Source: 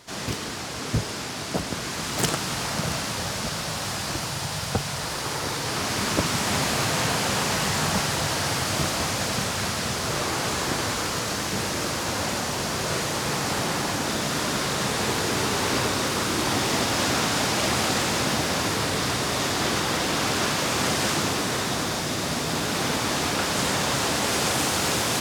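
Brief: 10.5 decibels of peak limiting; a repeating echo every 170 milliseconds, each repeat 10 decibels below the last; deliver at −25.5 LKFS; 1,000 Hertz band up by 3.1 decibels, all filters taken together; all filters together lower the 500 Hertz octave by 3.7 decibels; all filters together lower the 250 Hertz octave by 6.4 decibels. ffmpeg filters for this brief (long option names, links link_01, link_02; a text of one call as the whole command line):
ffmpeg -i in.wav -af "equalizer=frequency=250:width_type=o:gain=-8,equalizer=frequency=500:width_type=o:gain=-4.5,equalizer=frequency=1000:width_type=o:gain=5.5,alimiter=limit=-18dB:level=0:latency=1,aecho=1:1:170|340|510|680:0.316|0.101|0.0324|0.0104,volume=1dB" out.wav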